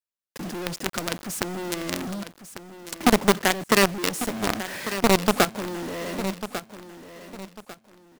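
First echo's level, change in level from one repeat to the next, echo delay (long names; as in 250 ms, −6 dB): −12.0 dB, −10.5 dB, 1,147 ms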